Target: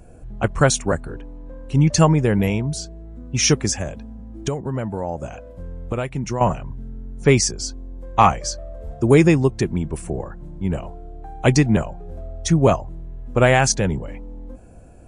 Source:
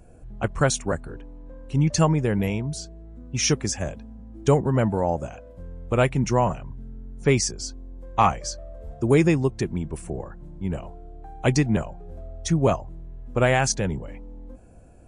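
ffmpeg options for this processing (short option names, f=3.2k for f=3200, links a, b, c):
-filter_complex "[0:a]asettb=1/sr,asplit=3[a][b][c];[a]atrim=end=3.774[d];[b]atrim=start=3.77:end=6.41,asetpts=PTS-STARTPTS,afade=t=in:d=0.004:c=qsin,afade=t=out:st=2.636:d=0.004:c=qsin,acompressor=threshold=-27dB:ratio=6[e];[c]atrim=start=6.406[f];[d][e]acrossfade=d=0.004:c1=hsin:c2=qsin[g];[g][f]acrossfade=d=0.004:c1=qsin:c2=hsin,volume=5dB"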